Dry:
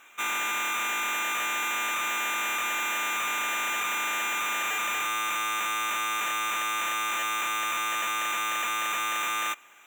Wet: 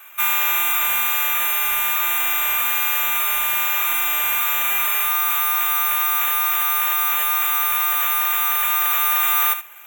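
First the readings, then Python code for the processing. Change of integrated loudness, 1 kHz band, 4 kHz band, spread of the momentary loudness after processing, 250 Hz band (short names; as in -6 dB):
+10.5 dB, +5.0 dB, +5.0 dB, 1 LU, n/a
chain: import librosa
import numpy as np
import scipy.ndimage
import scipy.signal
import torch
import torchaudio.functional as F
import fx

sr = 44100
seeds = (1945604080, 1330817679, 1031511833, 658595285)

y = scipy.signal.sosfilt(scipy.signal.butter(2, 550.0, 'highpass', fs=sr, output='sos'), x)
y = fx.high_shelf(y, sr, hz=8600.0, db=-11.0)
y = fx.rider(y, sr, range_db=10, speed_s=2.0)
y = y + 10.0 ** (-11.0 / 20.0) * np.pad(y, (int(73 * sr / 1000.0), 0))[:len(y)]
y = (np.kron(y[::3], np.eye(3)[0]) * 3)[:len(y)]
y = y * 10.0 ** (5.5 / 20.0)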